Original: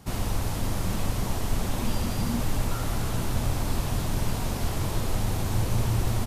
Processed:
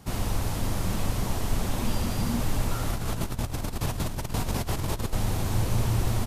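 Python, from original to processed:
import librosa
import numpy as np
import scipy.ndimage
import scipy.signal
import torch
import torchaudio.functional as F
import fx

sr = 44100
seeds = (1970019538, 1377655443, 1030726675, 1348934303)

y = fx.over_compress(x, sr, threshold_db=-28.0, ratio=-0.5, at=(2.9, 5.13))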